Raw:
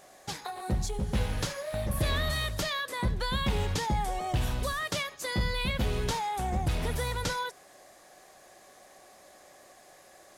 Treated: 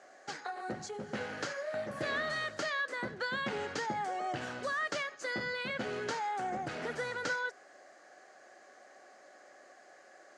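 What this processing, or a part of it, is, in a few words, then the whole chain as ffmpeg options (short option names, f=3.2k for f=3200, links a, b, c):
television speaker: -af "highpass=f=170:w=0.5412,highpass=f=170:w=1.3066,equalizer=f=180:t=q:w=4:g=-10,equalizer=f=990:t=q:w=4:g=-8,equalizer=f=1.5k:t=q:w=4:g=5,equalizer=f=2.5k:t=q:w=4:g=-5,equalizer=f=3.6k:t=q:w=4:g=-10,equalizer=f=5.4k:t=q:w=4:g=-4,lowpass=f=6.6k:w=0.5412,lowpass=f=6.6k:w=1.3066,equalizer=f=1.4k:w=0.44:g=4,volume=-3.5dB"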